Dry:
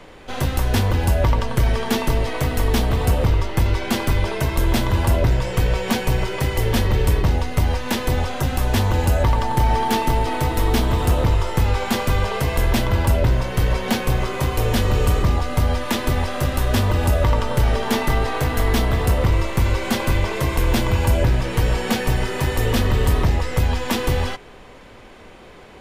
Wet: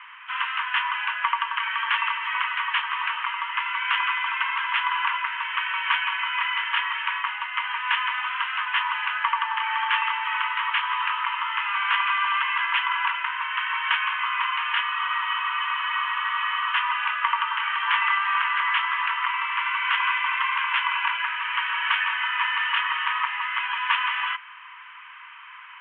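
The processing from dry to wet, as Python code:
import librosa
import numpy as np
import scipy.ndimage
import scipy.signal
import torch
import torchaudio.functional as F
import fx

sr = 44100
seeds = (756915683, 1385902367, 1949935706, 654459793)

y = np.repeat(x[::4], 4)[:len(x)]
y = scipy.signal.sosfilt(scipy.signal.cheby1(5, 1.0, [970.0, 3100.0], 'bandpass', fs=sr, output='sos'), y)
y = fx.spec_freeze(y, sr, seeds[0], at_s=14.85, hold_s=1.89)
y = y * 10.0 ** (7.0 / 20.0)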